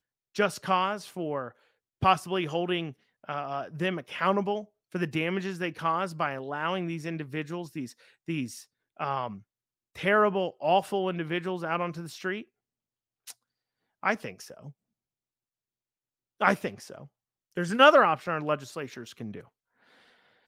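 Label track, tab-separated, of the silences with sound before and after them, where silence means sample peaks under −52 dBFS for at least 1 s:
14.720000	16.400000	silence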